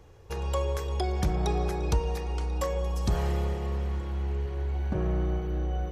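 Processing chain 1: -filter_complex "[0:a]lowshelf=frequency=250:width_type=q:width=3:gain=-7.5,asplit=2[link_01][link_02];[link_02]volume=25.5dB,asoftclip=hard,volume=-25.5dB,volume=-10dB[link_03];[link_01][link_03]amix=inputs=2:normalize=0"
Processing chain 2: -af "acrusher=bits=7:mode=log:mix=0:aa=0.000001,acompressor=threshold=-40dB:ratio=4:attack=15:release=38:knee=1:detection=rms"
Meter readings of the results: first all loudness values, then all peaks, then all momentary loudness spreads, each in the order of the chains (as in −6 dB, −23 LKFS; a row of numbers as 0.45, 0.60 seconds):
−30.0, −40.5 LKFS; −14.5, −27.0 dBFS; 7, 1 LU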